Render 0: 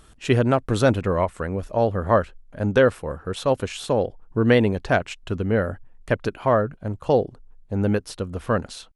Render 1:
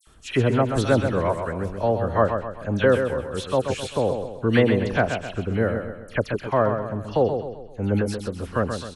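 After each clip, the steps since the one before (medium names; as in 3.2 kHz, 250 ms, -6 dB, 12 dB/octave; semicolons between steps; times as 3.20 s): phase dispersion lows, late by 73 ms, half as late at 2.5 kHz; on a send: feedback delay 130 ms, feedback 44%, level -7 dB; on the sum: trim -1.5 dB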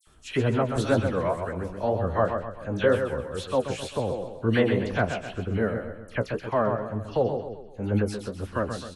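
flange 2 Hz, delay 8.4 ms, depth 8.9 ms, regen +33%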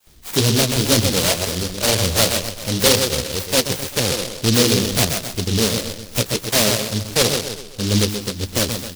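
in parallel at -9 dB: wavefolder -21 dBFS; on the sum: delay time shaken by noise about 4.2 kHz, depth 0.3 ms; trim +5.5 dB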